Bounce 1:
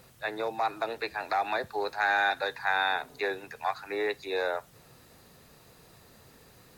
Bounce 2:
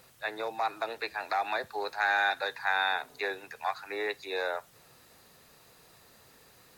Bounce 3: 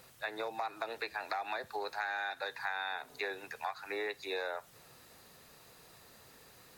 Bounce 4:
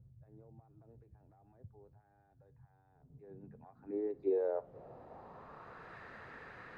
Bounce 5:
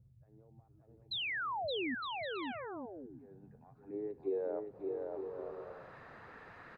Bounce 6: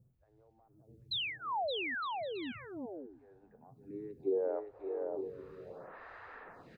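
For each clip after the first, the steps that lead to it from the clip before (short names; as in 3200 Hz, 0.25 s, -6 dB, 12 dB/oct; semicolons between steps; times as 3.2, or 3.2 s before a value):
low shelf 410 Hz -8.5 dB
compressor 6:1, threshold -34 dBFS, peak gain reduction 11 dB
limiter -31.5 dBFS, peak gain reduction 9.5 dB; low-pass sweep 110 Hz -> 1700 Hz, 2.91–5.98; gain +6 dB
painted sound fall, 1.11–1.95, 230–4200 Hz -34 dBFS; bouncing-ball echo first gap 0.57 s, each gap 0.6×, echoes 5; gain -3.5 dB
photocell phaser 0.69 Hz; gain +4 dB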